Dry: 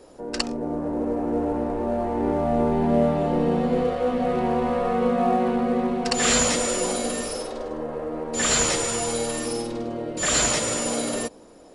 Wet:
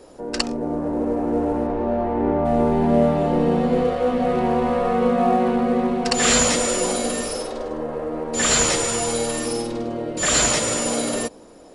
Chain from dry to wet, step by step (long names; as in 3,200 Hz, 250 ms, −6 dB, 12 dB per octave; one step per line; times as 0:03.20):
0:01.66–0:02.44: low-pass filter 4,700 Hz → 2,300 Hz 12 dB per octave
level +3 dB